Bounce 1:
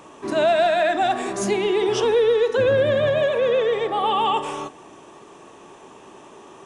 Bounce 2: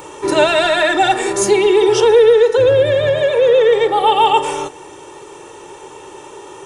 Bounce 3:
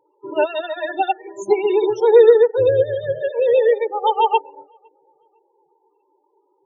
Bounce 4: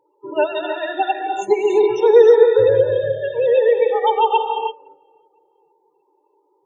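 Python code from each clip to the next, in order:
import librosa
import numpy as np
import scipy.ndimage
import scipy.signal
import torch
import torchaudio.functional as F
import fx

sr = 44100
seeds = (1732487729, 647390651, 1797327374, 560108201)

y1 = fx.high_shelf(x, sr, hz=8900.0, db=10.5)
y1 = y1 + 0.82 * np.pad(y1, (int(2.2 * sr / 1000.0), 0))[:len(y1)]
y1 = fx.rider(y1, sr, range_db=4, speed_s=2.0)
y1 = y1 * 10.0 ** (4.5 / 20.0)
y2 = fx.echo_feedback(y1, sr, ms=507, feedback_pct=48, wet_db=-15)
y2 = fx.spec_topn(y2, sr, count=16)
y2 = fx.upward_expand(y2, sr, threshold_db=-26.0, expansion=2.5)
y2 = y2 * 10.0 ** (1.0 / 20.0)
y3 = fx.rev_gated(y2, sr, seeds[0], gate_ms=360, shape='rising', drr_db=4.0)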